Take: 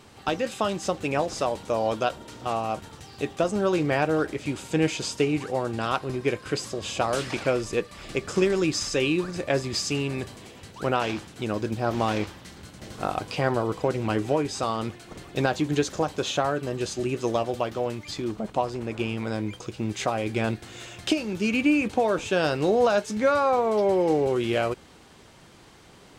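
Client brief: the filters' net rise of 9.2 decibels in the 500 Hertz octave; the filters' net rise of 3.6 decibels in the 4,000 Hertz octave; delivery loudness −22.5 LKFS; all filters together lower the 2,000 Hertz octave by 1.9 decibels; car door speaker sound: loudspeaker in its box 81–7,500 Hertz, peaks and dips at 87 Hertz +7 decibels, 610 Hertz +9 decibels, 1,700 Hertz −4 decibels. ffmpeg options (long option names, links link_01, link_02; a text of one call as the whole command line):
ffmpeg -i in.wav -af "highpass=81,equalizer=frequency=87:width_type=q:width=4:gain=7,equalizer=frequency=610:width_type=q:width=4:gain=9,equalizer=frequency=1700:width_type=q:width=4:gain=-4,lowpass=frequency=7500:width=0.5412,lowpass=frequency=7500:width=1.3066,equalizer=frequency=500:width_type=o:gain=6,equalizer=frequency=2000:width_type=o:gain=-3.5,equalizer=frequency=4000:width_type=o:gain=6,volume=-2.5dB" out.wav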